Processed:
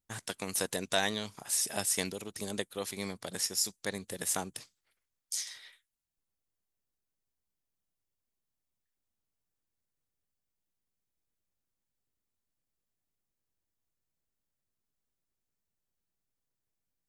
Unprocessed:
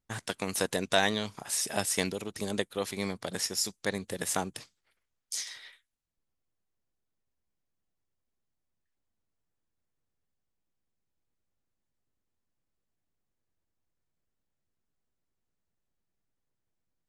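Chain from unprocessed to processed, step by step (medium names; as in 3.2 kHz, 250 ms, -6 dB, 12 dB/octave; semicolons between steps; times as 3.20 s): treble shelf 5.8 kHz +8.5 dB; trim -5 dB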